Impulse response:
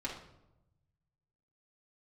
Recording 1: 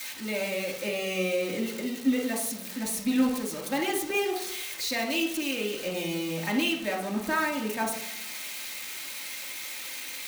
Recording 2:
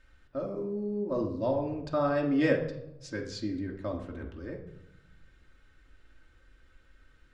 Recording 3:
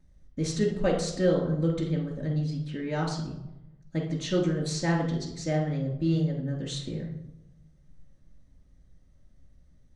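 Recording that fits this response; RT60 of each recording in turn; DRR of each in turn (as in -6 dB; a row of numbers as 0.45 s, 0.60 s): 1; 0.90 s, 0.90 s, 0.90 s; -7.0 dB, -1.0 dB, -13.0 dB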